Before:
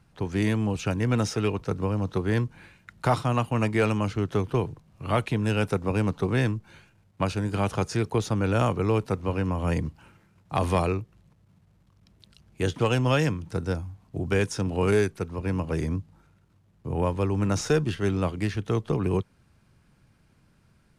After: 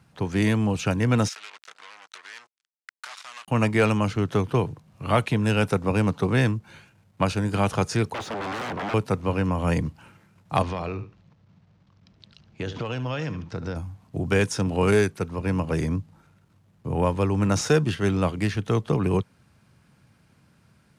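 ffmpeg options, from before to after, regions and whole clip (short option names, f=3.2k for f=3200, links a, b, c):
-filter_complex "[0:a]asettb=1/sr,asplit=3[a][b][c];[a]atrim=end=1.284[d];[b]atrim=start=1.28:end=3.48,asetpts=PTS-STARTPTS,afade=t=in:d=0.004:c=qsin,afade=t=out:st=2.196:d=0.004:c=qsin,acompressor=threshold=-33dB:ratio=6:attack=3.2:release=140:knee=1:detection=peak,acrusher=bits=5:mix=0:aa=0.5,asuperpass=centerf=3700:order=4:qfactor=0.52[e];[c]atrim=start=3.476[f];[d][e]acrossfade=d=0.004:c1=hsin:c2=qsin[g];[g][f]acrossfade=d=0.004:c1=qsin:c2=hsin,asettb=1/sr,asplit=3[h][i][j];[h]atrim=end=8.144[k];[i]atrim=start=8.14:end=8.94,asetpts=PTS-STARTPTS,afade=t=in:d=0.004:c=qsin,afade=t=out:st=0.796:d=0.004:c=qsin,aeval=exprs='0.0355*(abs(mod(val(0)/0.0355+3,4)-2)-1)':c=same,asplit=2[l][m];[m]highpass=f=720:p=1,volume=16dB,asoftclip=type=tanh:threshold=-24.5dB[n];[l][n]amix=inputs=2:normalize=0,lowpass=f=1.2k:p=1,volume=-6dB[o];[j]atrim=start=8.936[p];[k][o]acrossfade=d=0.004:c1=hsin:c2=qsin[q];[q][p]acrossfade=d=0.004:c1=qsin:c2=hsin,asettb=1/sr,asplit=3[r][s][t];[r]atrim=end=10.624[u];[s]atrim=start=10.62:end=13.76,asetpts=PTS-STARTPTS,afade=t=in:d=0.004:c=qsin,afade=t=out:st=3.136:d=0.004:c=qsin,lowpass=f=5.8k:w=0.5412,lowpass=f=5.8k:w=1.3066,aecho=1:1:72|144:0.158|0.0254,atrim=end_sample=138474,acompressor=threshold=-29dB:ratio=6:attack=3.2:release=140:knee=1:detection=peak[v];[t]atrim=start=13.756[w];[u][v]acrossfade=d=0.004:c1=hsin:c2=qsin[x];[x][w]acrossfade=d=0.004:c1=qsin:c2=hsin,highpass=86,equalizer=f=360:t=o:w=0.6:g=-3,volume=4dB"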